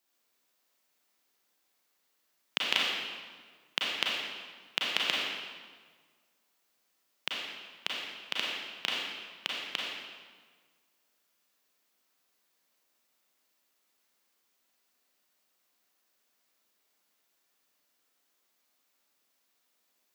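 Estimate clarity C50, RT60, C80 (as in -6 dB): -1.5 dB, 1.6 s, 0.5 dB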